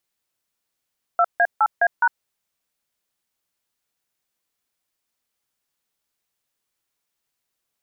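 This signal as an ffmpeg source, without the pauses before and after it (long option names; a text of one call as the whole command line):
ffmpeg -f lavfi -i "aevalsrc='0.158*clip(min(mod(t,0.208),0.055-mod(t,0.208))/0.002,0,1)*(eq(floor(t/0.208),0)*(sin(2*PI*697*mod(t,0.208))+sin(2*PI*1336*mod(t,0.208)))+eq(floor(t/0.208),1)*(sin(2*PI*697*mod(t,0.208))+sin(2*PI*1633*mod(t,0.208)))+eq(floor(t/0.208),2)*(sin(2*PI*852*mod(t,0.208))+sin(2*PI*1336*mod(t,0.208)))+eq(floor(t/0.208),3)*(sin(2*PI*697*mod(t,0.208))+sin(2*PI*1633*mod(t,0.208)))+eq(floor(t/0.208),4)*(sin(2*PI*941*mod(t,0.208))+sin(2*PI*1477*mod(t,0.208))))':duration=1.04:sample_rate=44100" out.wav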